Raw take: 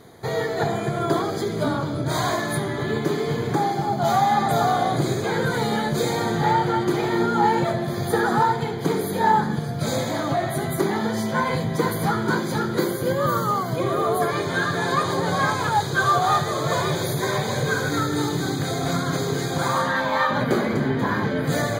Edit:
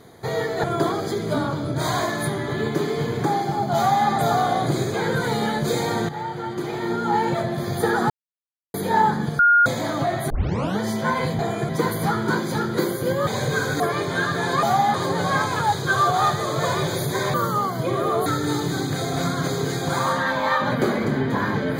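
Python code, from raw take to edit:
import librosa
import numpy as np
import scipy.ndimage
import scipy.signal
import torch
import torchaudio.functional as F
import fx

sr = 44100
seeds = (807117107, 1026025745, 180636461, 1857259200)

y = fx.edit(x, sr, fx.move(start_s=0.64, length_s=0.3, to_s=11.69),
    fx.duplicate(start_s=4.06, length_s=0.31, to_s=15.02),
    fx.fade_in_from(start_s=6.39, length_s=1.5, floor_db=-12.5),
    fx.silence(start_s=8.4, length_s=0.64),
    fx.bleep(start_s=9.69, length_s=0.27, hz=1420.0, db=-11.5),
    fx.tape_start(start_s=10.6, length_s=0.49),
    fx.swap(start_s=13.27, length_s=0.92, other_s=17.42, other_length_s=0.53), tone=tone)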